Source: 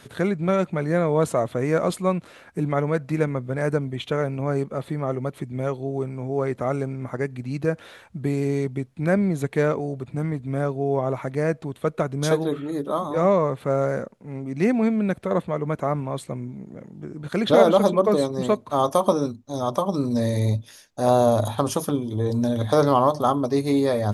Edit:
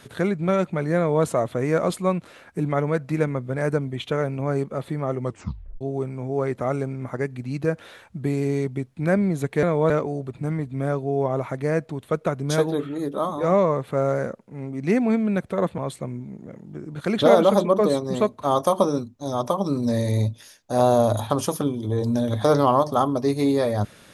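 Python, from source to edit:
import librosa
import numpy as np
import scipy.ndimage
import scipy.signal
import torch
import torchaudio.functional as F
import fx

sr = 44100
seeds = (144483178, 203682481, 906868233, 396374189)

y = fx.edit(x, sr, fx.duplicate(start_s=0.97, length_s=0.27, to_s=9.63),
    fx.tape_stop(start_s=5.22, length_s=0.59),
    fx.cut(start_s=15.51, length_s=0.55), tone=tone)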